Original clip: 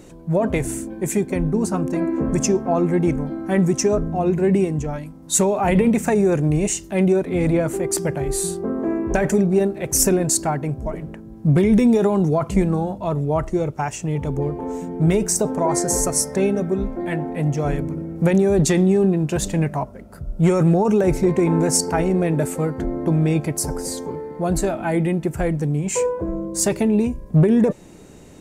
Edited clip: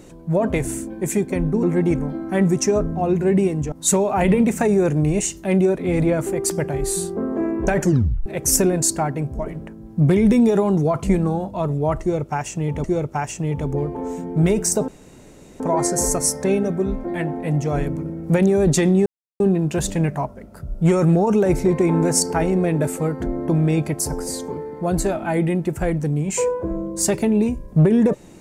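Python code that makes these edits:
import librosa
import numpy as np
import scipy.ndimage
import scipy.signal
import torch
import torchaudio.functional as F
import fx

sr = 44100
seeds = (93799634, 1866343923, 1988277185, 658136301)

y = fx.edit(x, sr, fx.cut(start_s=1.63, length_s=1.17),
    fx.cut(start_s=4.89, length_s=0.3),
    fx.tape_stop(start_s=9.29, length_s=0.44),
    fx.repeat(start_s=13.48, length_s=0.83, count=2),
    fx.insert_room_tone(at_s=15.52, length_s=0.72),
    fx.insert_silence(at_s=18.98, length_s=0.34), tone=tone)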